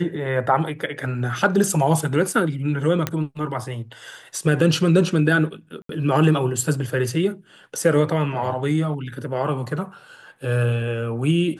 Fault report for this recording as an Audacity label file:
3.070000	3.070000	pop -7 dBFS
5.820000	5.890000	dropout 73 ms

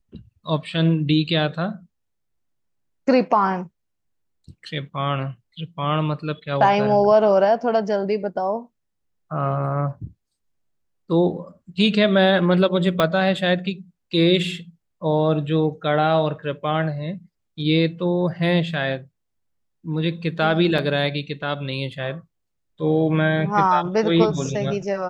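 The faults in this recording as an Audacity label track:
13.000000	13.000000	pop -6 dBFS
20.780000	20.780000	dropout 4 ms

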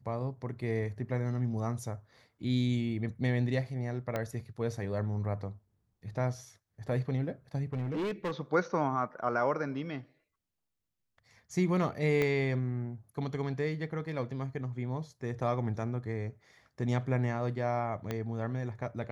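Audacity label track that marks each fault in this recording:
4.160000	4.160000	pop -19 dBFS
7.730000	8.400000	clipped -30 dBFS
12.220000	12.220000	pop -17 dBFS
18.110000	18.110000	pop -20 dBFS

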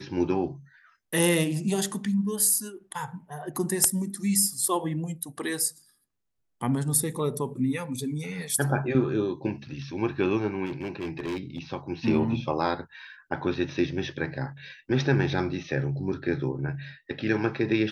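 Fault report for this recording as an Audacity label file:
10.650000	11.590000	clipped -27.5 dBFS

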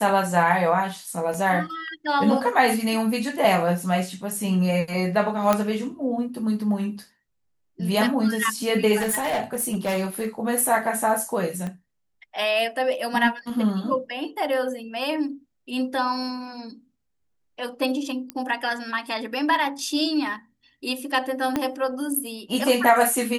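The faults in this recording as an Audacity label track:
1.340000	1.340000	dropout 3.2 ms
5.530000	5.530000	pop -6 dBFS
8.990000	10.280000	clipped -20.5 dBFS
11.670000	11.670000	pop -20 dBFS
18.300000	18.300000	pop -15 dBFS
21.560000	21.560000	pop -10 dBFS

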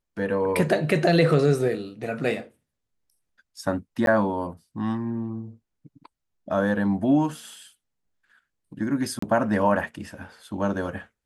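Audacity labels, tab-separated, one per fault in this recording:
4.060000	4.070000	dropout 12 ms
9.190000	9.220000	dropout 34 ms

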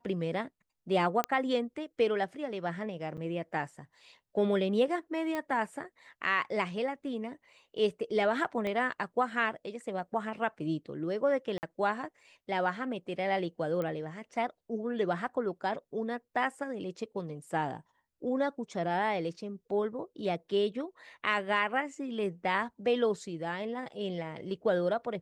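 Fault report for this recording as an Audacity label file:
1.240000	1.240000	pop -14 dBFS
3.170000	3.180000	dropout 7.6 ms
5.350000	5.350000	pop -21 dBFS
8.670000	8.670000	pop -23 dBFS
11.580000	11.630000	dropout 49 ms
13.820000	13.820000	pop -23 dBFS

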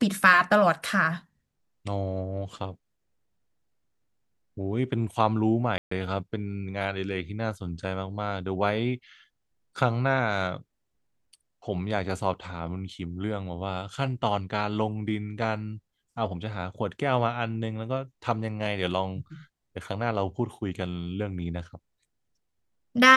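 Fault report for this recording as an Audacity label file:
5.780000	5.910000	dropout 134 ms

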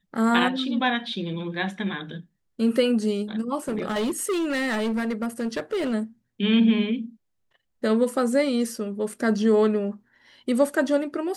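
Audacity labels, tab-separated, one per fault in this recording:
3.680000	5.940000	clipped -22 dBFS

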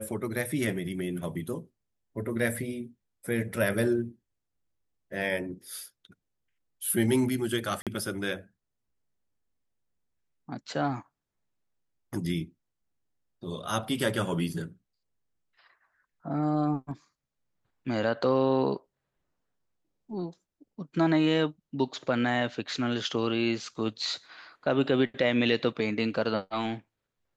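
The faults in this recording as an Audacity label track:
7.820000	7.870000	dropout 47 ms

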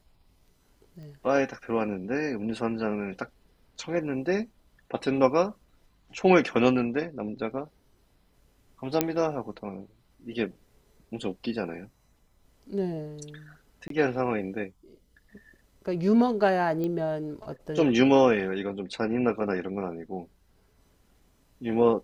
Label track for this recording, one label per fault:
1.030000	1.030000	pop -37 dBFS
9.010000	9.010000	pop -7 dBFS
13.880000	13.900000	dropout 23 ms
16.840000	16.840000	pop -20 dBFS

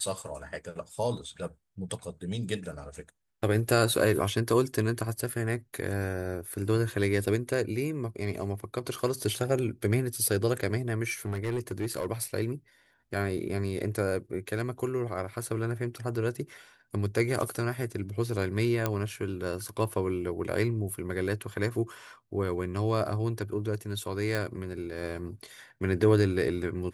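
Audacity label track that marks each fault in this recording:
11.070000	12.060000	clipped -25.5 dBFS
18.860000	18.860000	pop -12 dBFS
24.350000	24.350000	pop

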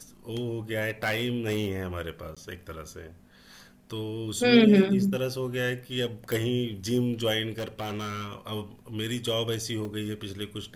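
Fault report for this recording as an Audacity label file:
0.890000	1.680000	clipped -22 dBFS
2.350000	2.370000	dropout 16 ms
6.320000	6.320000	pop
7.510000	8.330000	clipped -29 dBFS
9.850000	9.850000	dropout 2.5 ms

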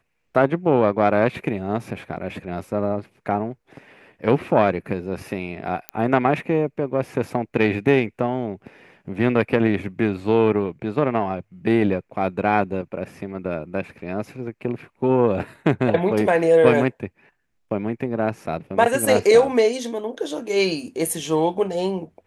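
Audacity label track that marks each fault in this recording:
5.890000	5.890000	pop -11 dBFS

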